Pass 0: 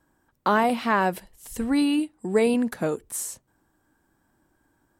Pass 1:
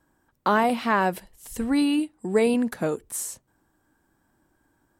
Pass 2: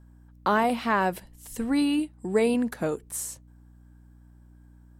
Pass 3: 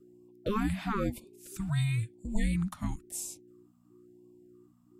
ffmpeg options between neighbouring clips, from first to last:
-af anull
-af "aeval=exprs='val(0)+0.00355*(sin(2*PI*60*n/s)+sin(2*PI*2*60*n/s)/2+sin(2*PI*3*60*n/s)/3+sin(2*PI*4*60*n/s)/4+sin(2*PI*5*60*n/s)/5)':c=same,volume=0.794"
-af "afreqshift=-420,afftfilt=real='re*(1-between(b*sr/1024,400*pow(1600/400,0.5+0.5*sin(2*PI*0.99*pts/sr))/1.41,400*pow(1600/400,0.5+0.5*sin(2*PI*0.99*pts/sr))*1.41))':imag='im*(1-between(b*sr/1024,400*pow(1600/400,0.5+0.5*sin(2*PI*0.99*pts/sr))/1.41,400*pow(1600/400,0.5+0.5*sin(2*PI*0.99*pts/sr))*1.41))':win_size=1024:overlap=0.75,volume=0.562"

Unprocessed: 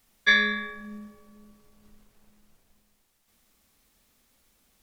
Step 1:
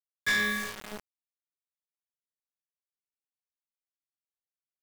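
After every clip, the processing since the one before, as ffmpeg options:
-af "acrusher=bits=5:mix=0:aa=0.000001,asoftclip=type=tanh:threshold=0.0708"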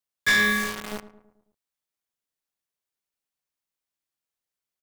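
-filter_complex "[0:a]asplit=2[s0][s1];[s1]adelay=109,lowpass=f=1300:p=1,volume=0.2,asplit=2[s2][s3];[s3]adelay=109,lowpass=f=1300:p=1,volume=0.53,asplit=2[s4][s5];[s5]adelay=109,lowpass=f=1300:p=1,volume=0.53,asplit=2[s6][s7];[s7]adelay=109,lowpass=f=1300:p=1,volume=0.53,asplit=2[s8][s9];[s9]adelay=109,lowpass=f=1300:p=1,volume=0.53[s10];[s0][s2][s4][s6][s8][s10]amix=inputs=6:normalize=0,volume=2.11"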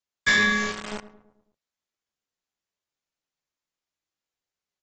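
-ar 32000 -c:a aac -b:a 24k

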